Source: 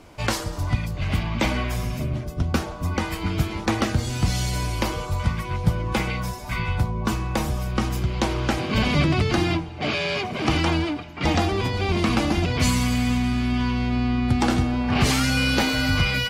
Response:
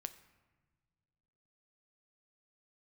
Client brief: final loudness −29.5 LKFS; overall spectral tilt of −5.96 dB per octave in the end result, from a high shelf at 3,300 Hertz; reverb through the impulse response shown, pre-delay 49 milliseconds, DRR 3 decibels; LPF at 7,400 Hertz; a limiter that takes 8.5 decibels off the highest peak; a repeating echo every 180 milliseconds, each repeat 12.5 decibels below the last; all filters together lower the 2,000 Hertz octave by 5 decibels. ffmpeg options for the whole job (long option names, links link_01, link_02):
-filter_complex "[0:a]lowpass=7400,equalizer=frequency=2000:width_type=o:gain=-5.5,highshelf=frequency=3300:gain=-3.5,alimiter=limit=-16dB:level=0:latency=1,aecho=1:1:180|360|540:0.237|0.0569|0.0137,asplit=2[link_01][link_02];[1:a]atrim=start_sample=2205,adelay=49[link_03];[link_02][link_03]afir=irnorm=-1:irlink=0,volume=0.5dB[link_04];[link_01][link_04]amix=inputs=2:normalize=0,volume=-6dB"